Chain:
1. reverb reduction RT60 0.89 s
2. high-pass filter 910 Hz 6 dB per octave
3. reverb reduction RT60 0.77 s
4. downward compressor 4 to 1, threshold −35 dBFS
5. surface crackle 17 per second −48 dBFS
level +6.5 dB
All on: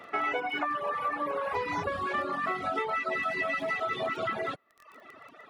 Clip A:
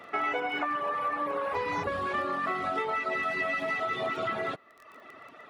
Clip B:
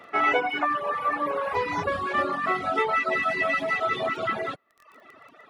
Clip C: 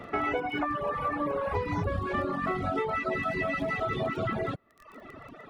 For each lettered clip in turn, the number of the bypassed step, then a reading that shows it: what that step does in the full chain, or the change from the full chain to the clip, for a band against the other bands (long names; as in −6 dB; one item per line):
3, change in momentary loudness spread +2 LU
4, change in momentary loudness spread +1 LU
2, 125 Hz band +14.0 dB